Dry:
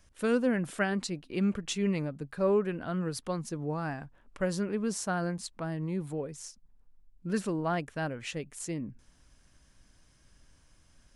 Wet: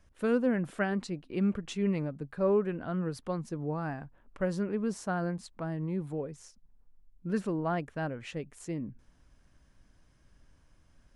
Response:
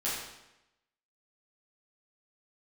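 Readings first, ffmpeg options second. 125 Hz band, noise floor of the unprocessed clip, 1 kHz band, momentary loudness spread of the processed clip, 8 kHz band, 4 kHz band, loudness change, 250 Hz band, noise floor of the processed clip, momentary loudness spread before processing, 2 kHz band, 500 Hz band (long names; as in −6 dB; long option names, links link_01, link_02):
0.0 dB, −64 dBFS, −1.0 dB, 11 LU, −9.5 dB, −7.0 dB, −0.5 dB, 0.0 dB, −64 dBFS, 10 LU, −3.0 dB, −0.5 dB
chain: -af "highshelf=frequency=2900:gain=-11"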